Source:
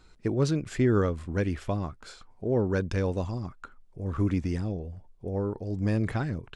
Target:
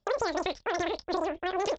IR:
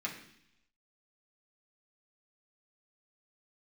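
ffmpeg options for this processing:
-filter_complex "[0:a]agate=range=-23dB:threshold=-46dB:ratio=16:detection=peak,equalizer=frequency=160:width_type=o:width=0.67:gain=10,equalizer=frequency=400:width_type=o:width=0.67:gain=-5,equalizer=frequency=1000:width_type=o:width=0.67:gain=7,acompressor=threshold=-25dB:ratio=6,asplit=2[link_01][link_02];[link_02]aecho=0:1:89:0.15[link_03];[link_01][link_03]amix=inputs=2:normalize=0,asetrate=161847,aresample=44100,aresample=16000,aresample=44100"

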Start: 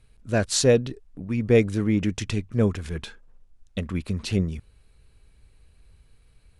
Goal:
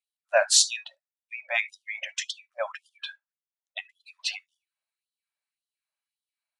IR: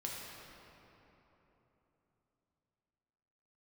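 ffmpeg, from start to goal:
-filter_complex "[0:a]asplit=2[link_01][link_02];[1:a]atrim=start_sample=2205,atrim=end_sample=3528[link_03];[link_02][link_03]afir=irnorm=-1:irlink=0,volume=0dB[link_04];[link_01][link_04]amix=inputs=2:normalize=0,afftdn=noise_reduction=28:noise_floor=-34,afftfilt=real='re*gte(b*sr/1024,530*pow(3000/530,0.5+0.5*sin(2*PI*1.8*pts/sr)))':imag='im*gte(b*sr/1024,530*pow(3000/530,0.5+0.5*sin(2*PI*1.8*pts/sr)))':win_size=1024:overlap=0.75,volume=1.5dB"

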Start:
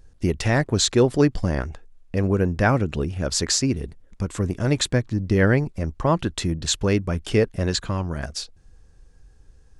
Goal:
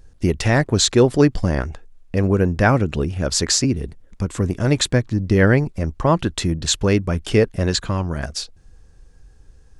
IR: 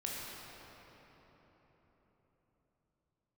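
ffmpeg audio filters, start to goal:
-filter_complex "[0:a]asettb=1/sr,asplit=3[link_01][link_02][link_03];[link_01]atrim=end=3.644[link_04];[link_02]atrim=start=3.64:end=4.4,asetpts=PTS-STARTPTS,afade=type=in:duration=0.004:curve=qsin,afade=type=out:start_time=0.756:duration=0.004:curve=qsin,acrossover=split=390[link_05][link_06];[link_06]acompressor=threshold=-34dB:ratio=6[link_07];[link_05][link_07]amix=inputs=2:normalize=0[link_08];[link_03]atrim=start=4.396[link_09];[link_04][link_08]acrossfade=duration=0.004:curve1=hsin:curve2=qsin[link_10];[link_10][link_09]acrossfade=duration=0.004:curve1=qsin:curve2=hsin,volume=3.5dB"

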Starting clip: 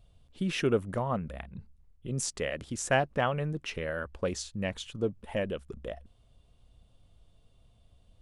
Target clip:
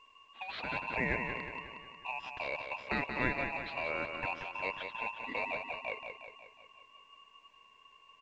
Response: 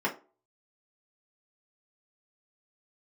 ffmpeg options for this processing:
-af "afftfilt=real='real(if(between(b,1,1012),(2*floor((b-1)/92)+1)*92-b,b),0)':imag='imag(if(between(b,1,1012),(2*floor((b-1)/92)+1)*92-b,b),0)*if(between(b,1,1012),-1,1)':win_size=2048:overlap=0.75,afftfilt=real='re*lt(hypot(re,im),0.224)':imag='im*lt(hypot(re,im),0.224)':win_size=1024:overlap=0.75,adynamicequalizer=threshold=0.002:dfrequency=720:dqfactor=4.6:tfrequency=720:tqfactor=4.6:attack=5:release=100:ratio=0.375:range=2.5:mode=cutabove:tftype=bell,asoftclip=type=tanh:threshold=-17.5dB,highpass=130,equalizer=frequency=150:width_type=q:width=4:gain=-9,equalizer=frequency=320:width_type=q:width=4:gain=-5,equalizer=frequency=730:width_type=q:width=4:gain=5,equalizer=frequency=1100:width_type=q:width=4:gain=7,lowpass=frequency=2700:width=0.5412,lowpass=frequency=2700:width=1.3066,aecho=1:1:181|362|543|724|905|1086|1267:0.473|0.251|0.133|0.0704|0.0373|0.0198|0.0105,aeval=exprs='val(0)*sin(2*PI*850*n/s)':channel_layout=same" -ar 16000 -c:a pcm_mulaw

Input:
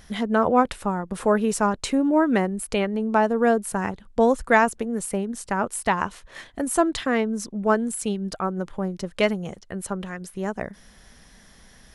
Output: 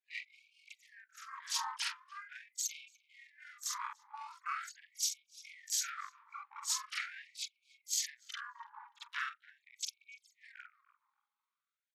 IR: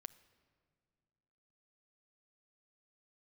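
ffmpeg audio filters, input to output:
-filter_complex "[0:a]afftfilt=real='re':imag='-im':win_size=4096:overlap=0.75,anlmdn=2.51,acompressor=threshold=-33dB:ratio=6,alimiter=level_in=6dB:limit=-24dB:level=0:latency=1:release=430,volume=-6dB,asplit=4[link_01][link_02][link_03][link_04];[link_02]asetrate=29433,aresample=44100,atempo=1.49831,volume=-9dB[link_05];[link_03]asetrate=52444,aresample=44100,atempo=0.840896,volume=-3dB[link_06];[link_04]asetrate=88200,aresample=44100,atempo=0.5,volume=-10dB[link_07];[link_01][link_05][link_06][link_07]amix=inputs=4:normalize=0,aeval=exprs='val(0)+0.00398*sin(2*PI*770*n/s)':channel_layout=same,asetrate=27781,aresample=44100,atempo=1.5874,asplit=2[link_08][link_09];[link_09]adelay=291,lowpass=frequency=2800:poles=1,volume=-23dB,asplit=2[link_10][link_11];[link_11]adelay=291,lowpass=frequency=2800:poles=1,volume=0.24[link_12];[link_10][link_12]amix=inputs=2:normalize=0[link_13];[link_08][link_13]amix=inputs=2:normalize=0,afftfilt=real='re*gte(b*sr/1024,810*pow(2200/810,0.5+0.5*sin(2*PI*0.42*pts/sr)))':imag='im*gte(b*sr/1024,810*pow(2200/810,0.5+0.5*sin(2*PI*0.42*pts/sr)))':win_size=1024:overlap=0.75,volume=8.5dB"

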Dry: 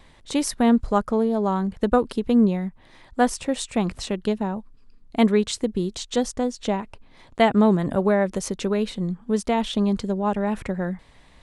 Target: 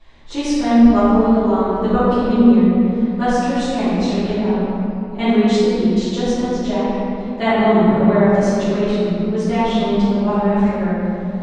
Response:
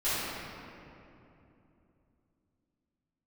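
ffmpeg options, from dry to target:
-filter_complex "[0:a]lowpass=frequency=6800:width=0.5412,lowpass=frequency=6800:width=1.3066[link_01];[1:a]atrim=start_sample=2205[link_02];[link_01][link_02]afir=irnorm=-1:irlink=0,volume=-5.5dB"

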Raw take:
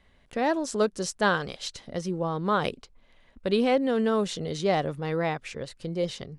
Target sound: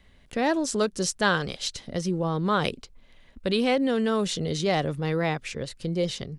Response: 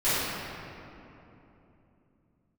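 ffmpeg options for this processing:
-filter_complex "[0:a]equalizer=frequency=890:width=0.55:gain=-5.5,acrossover=split=650|1600[link_01][link_02][link_03];[link_01]alimiter=level_in=1dB:limit=-24dB:level=0:latency=1,volume=-1dB[link_04];[link_04][link_02][link_03]amix=inputs=3:normalize=0,volume=5.5dB"

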